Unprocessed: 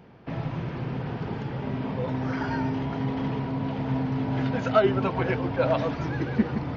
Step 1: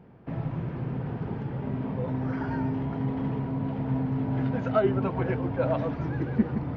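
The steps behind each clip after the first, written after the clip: FFT filter 180 Hz 0 dB, 1.7 kHz -6 dB, 4.6 kHz -14 dB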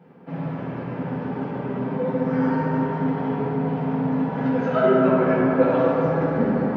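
high-pass 230 Hz 12 dB/octave; reverberation RT60 4.1 s, pre-delay 3 ms, DRR -8 dB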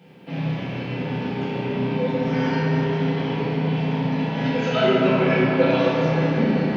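resonant high shelf 2 kHz +12.5 dB, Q 1.5; flutter echo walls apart 5.5 m, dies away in 0.38 s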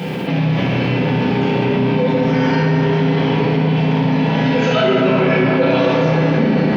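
level flattener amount 70%; trim +1.5 dB

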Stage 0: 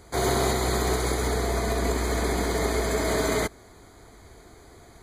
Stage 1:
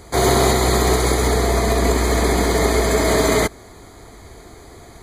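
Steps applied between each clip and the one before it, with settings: band-stop 1.5 kHz, Q 15; trim +8.5 dB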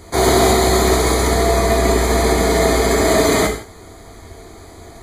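gated-style reverb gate 200 ms falling, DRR 1.5 dB

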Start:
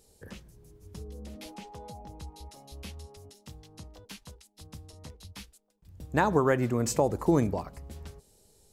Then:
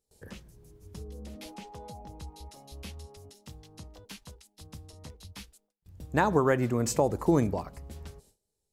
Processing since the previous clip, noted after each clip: gate with hold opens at -49 dBFS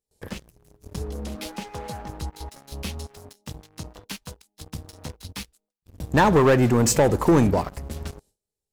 waveshaping leveller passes 3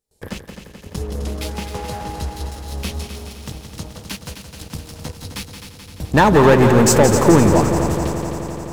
multi-head delay 86 ms, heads second and third, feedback 72%, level -9 dB; trim +5 dB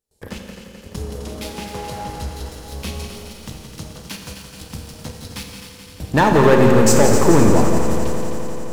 Schroeder reverb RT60 1.9 s, combs from 28 ms, DRR 4 dB; trim -2.5 dB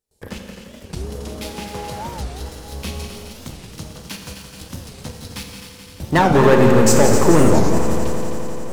warped record 45 rpm, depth 250 cents

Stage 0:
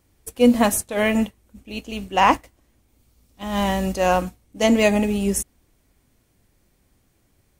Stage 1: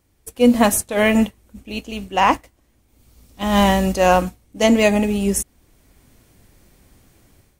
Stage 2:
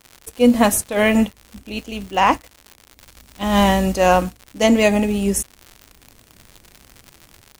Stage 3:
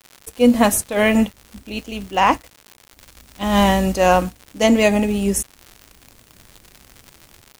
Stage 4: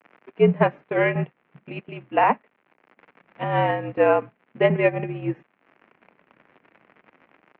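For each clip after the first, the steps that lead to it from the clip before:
level rider gain up to 11.5 dB; trim -1 dB
crackle 130 per s -28 dBFS
bit crusher 9-bit
mistuned SSB -63 Hz 250–2500 Hz; transient shaper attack +5 dB, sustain -7 dB; trim -4.5 dB

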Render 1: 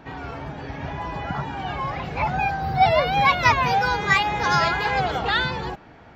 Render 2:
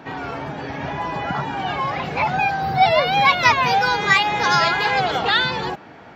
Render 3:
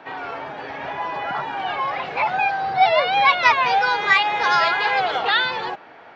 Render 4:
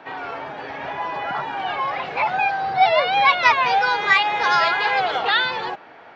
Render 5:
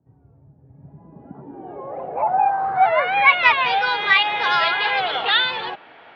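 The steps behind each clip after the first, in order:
Bessel high-pass 160 Hz, order 2; dynamic bell 3.8 kHz, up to +4 dB, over -38 dBFS, Q 0.94; in parallel at 0 dB: compression, threshold -27 dBFS, peak gain reduction 15 dB
three-band isolator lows -15 dB, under 390 Hz, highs -16 dB, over 4.7 kHz
no audible change
low-pass sweep 110 Hz -> 3.4 kHz, 0.60–3.59 s; trim -2.5 dB

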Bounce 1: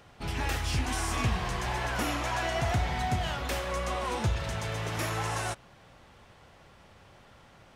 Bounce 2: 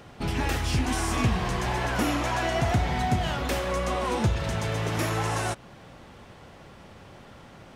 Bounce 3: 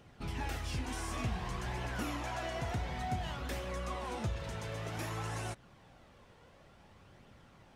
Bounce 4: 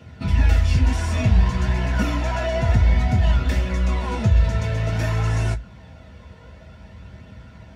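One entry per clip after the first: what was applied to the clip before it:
in parallel at -1.5 dB: compression, threshold -37 dBFS, peak gain reduction 13.5 dB; on the sum: peaking EQ 250 Hz +6 dB 2.1 oct
flange 0.55 Hz, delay 0.3 ms, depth 1.9 ms, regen +63%; trim -7.5 dB
reverberation RT60 0.10 s, pre-delay 3 ms, DRR -1 dB; trim +1.5 dB

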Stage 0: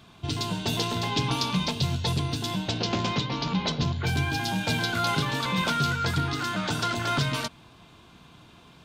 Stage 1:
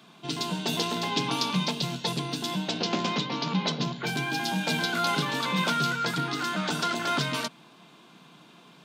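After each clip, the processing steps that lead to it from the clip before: steep high-pass 150 Hz 48 dB/octave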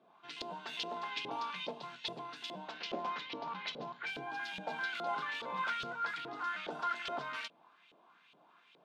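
LFO band-pass saw up 2.4 Hz 470–3100 Hz; trim -3 dB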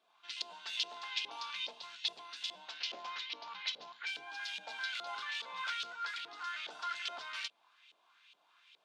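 band-pass filter 5.5 kHz, Q 0.83; trim +7 dB

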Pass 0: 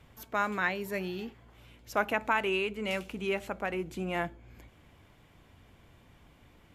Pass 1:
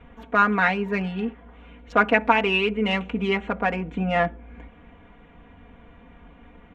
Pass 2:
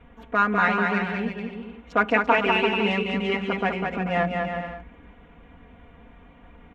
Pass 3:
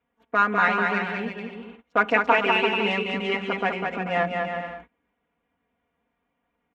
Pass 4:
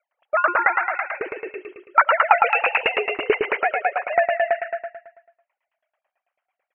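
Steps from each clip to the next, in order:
local Wiener filter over 9 samples; low-pass 3.6 kHz 12 dB/octave; comb 4.2 ms, depth 99%; trim +8 dB
bouncing-ball echo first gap 200 ms, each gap 0.7×, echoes 5; trim -2.5 dB
high-pass 300 Hz 6 dB/octave; gate -44 dBFS, range -23 dB; trim +1 dB
formants replaced by sine waves; on a send: feedback delay 109 ms, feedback 47%, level -5 dB; on the sum: sawtooth tremolo in dB decaying 9.1 Hz, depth 22 dB; trim +8.5 dB

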